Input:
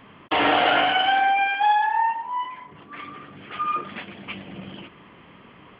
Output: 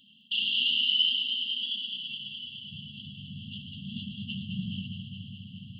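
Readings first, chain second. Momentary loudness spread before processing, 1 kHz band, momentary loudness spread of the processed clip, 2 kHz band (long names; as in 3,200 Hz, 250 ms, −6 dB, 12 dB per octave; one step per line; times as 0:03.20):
20 LU, below −40 dB, 19 LU, −13.0 dB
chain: high-pass filter sweep 490 Hz → 94 Hz, 0:01.25–0:02.41
linear-phase brick-wall band-stop 250–2,700 Hz
delay that swaps between a low-pass and a high-pass 105 ms, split 2,000 Hz, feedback 87%, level −5 dB
level +1.5 dB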